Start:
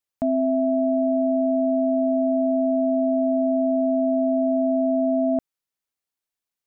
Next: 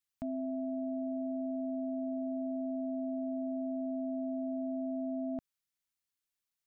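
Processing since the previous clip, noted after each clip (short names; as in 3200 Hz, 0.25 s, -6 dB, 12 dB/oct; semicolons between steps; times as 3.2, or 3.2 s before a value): bell 540 Hz -10 dB 1.8 oct; limiter -29 dBFS, peak gain reduction 8 dB; gain -1.5 dB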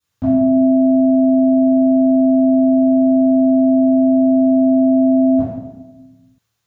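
reverb RT60 1.1 s, pre-delay 3 ms, DRR -15.5 dB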